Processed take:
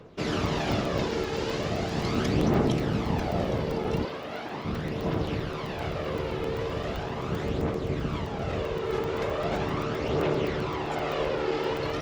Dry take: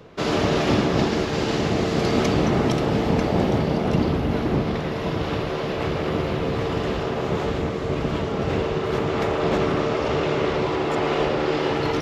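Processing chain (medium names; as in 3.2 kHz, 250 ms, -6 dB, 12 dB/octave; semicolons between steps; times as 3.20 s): phaser 0.39 Hz, delay 2.4 ms, feedback 41%; 4.05–4.65 s: frequency weighting A; crackling interface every 0.13 s, samples 128, zero, from 0.46 s; trim -7 dB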